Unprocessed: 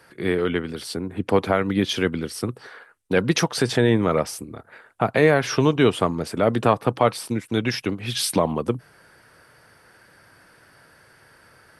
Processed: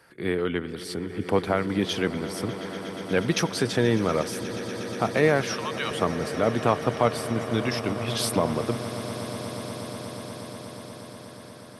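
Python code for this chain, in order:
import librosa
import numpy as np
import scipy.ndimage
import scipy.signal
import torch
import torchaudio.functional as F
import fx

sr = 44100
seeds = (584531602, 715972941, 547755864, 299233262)

y = fx.steep_highpass(x, sr, hz=900.0, slope=48, at=(5.47, 5.91))
y = fx.echo_swell(y, sr, ms=120, loudest=8, wet_db=-17.5)
y = y * librosa.db_to_amplitude(-4.0)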